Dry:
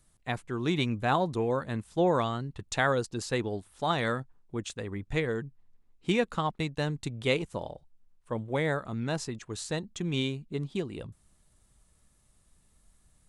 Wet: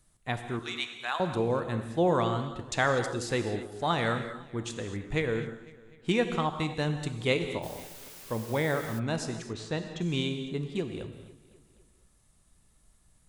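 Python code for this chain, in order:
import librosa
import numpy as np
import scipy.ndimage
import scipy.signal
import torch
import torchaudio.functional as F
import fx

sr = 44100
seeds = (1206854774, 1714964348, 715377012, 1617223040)

y = fx.highpass(x, sr, hz=1300.0, slope=12, at=(0.59, 1.2))
y = fx.echo_feedback(y, sr, ms=252, feedback_pct=53, wet_db=-19)
y = fx.rev_gated(y, sr, seeds[0], gate_ms=260, shape='flat', drr_db=7.0)
y = fx.quant_dither(y, sr, seeds[1], bits=8, dither='triangular', at=(7.62, 8.98), fade=0.02)
y = fx.lowpass(y, sr, hz=4300.0, slope=12, at=(9.53, 10.01))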